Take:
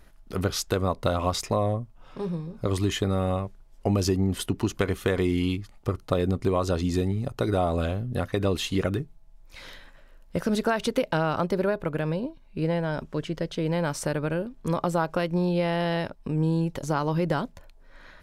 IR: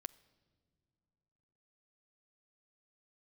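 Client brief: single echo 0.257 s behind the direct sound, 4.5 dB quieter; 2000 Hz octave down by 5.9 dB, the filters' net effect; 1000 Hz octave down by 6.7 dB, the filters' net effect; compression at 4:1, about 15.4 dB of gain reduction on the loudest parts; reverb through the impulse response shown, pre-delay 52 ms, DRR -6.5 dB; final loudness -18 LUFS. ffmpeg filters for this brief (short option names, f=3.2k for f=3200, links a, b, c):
-filter_complex "[0:a]equalizer=f=1k:t=o:g=-8.5,equalizer=f=2k:t=o:g=-4.5,acompressor=threshold=-40dB:ratio=4,aecho=1:1:257:0.596,asplit=2[a][b];[1:a]atrim=start_sample=2205,adelay=52[c];[b][c]afir=irnorm=-1:irlink=0,volume=11dB[d];[a][d]amix=inputs=2:normalize=0,volume=15.5dB"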